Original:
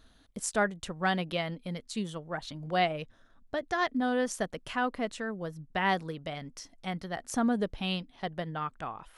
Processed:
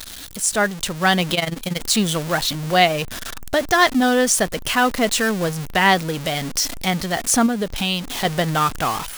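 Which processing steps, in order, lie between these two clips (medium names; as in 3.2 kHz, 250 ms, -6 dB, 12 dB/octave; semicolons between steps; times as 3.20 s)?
jump at every zero crossing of -38.5 dBFS; treble shelf 2.9 kHz +9.5 dB; level rider gain up to 13.5 dB; 1.34–1.81 s: AM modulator 21 Hz, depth 70%; 7.46–8.25 s: compression 2.5:1, threshold -21 dBFS, peak gain reduction 6.5 dB; tape noise reduction on one side only encoder only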